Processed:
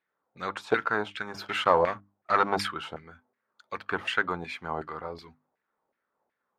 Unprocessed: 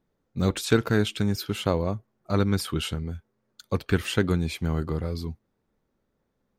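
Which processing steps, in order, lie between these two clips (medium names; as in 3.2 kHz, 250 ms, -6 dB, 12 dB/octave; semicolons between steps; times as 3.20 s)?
dynamic bell 870 Hz, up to +4 dB, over -41 dBFS, Q 1.6; 1.34–2.68 s: waveshaping leveller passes 2; LFO band-pass saw down 2.7 Hz 690–2100 Hz; hum notches 50/100/150/200/250/300 Hz; trim +7 dB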